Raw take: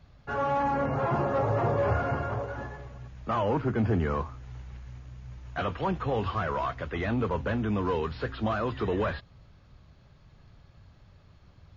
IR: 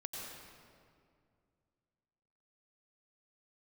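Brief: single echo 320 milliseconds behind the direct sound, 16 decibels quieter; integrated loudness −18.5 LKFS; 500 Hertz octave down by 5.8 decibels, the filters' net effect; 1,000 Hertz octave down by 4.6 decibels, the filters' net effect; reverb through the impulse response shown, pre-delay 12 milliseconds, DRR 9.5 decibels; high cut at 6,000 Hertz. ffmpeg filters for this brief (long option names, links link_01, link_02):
-filter_complex "[0:a]lowpass=6000,equalizer=frequency=500:width_type=o:gain=-6,equalizer=frequency=1000:width_type=o:gain=-4,aecho=1:1:320:0.158,asplit=2[link_01][link_02];[1:a]atrim=start_sample=2205,adelay=12[link_03];[link_02][link_03]afir=irnorm=-1:irlink=0,volume=-9dB[link_04];[link_01][link_04]amix=inputs=2:normalize=0,volume=13.5dB"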